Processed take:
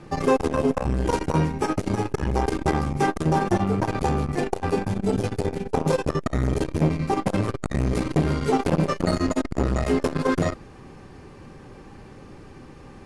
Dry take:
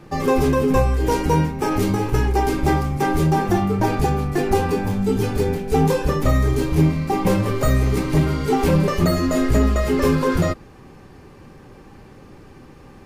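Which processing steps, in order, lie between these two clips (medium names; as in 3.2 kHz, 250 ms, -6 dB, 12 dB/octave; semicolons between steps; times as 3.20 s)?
steep low-pass 11 kHz 48 dB/octave; transformer saturation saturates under 390 Hz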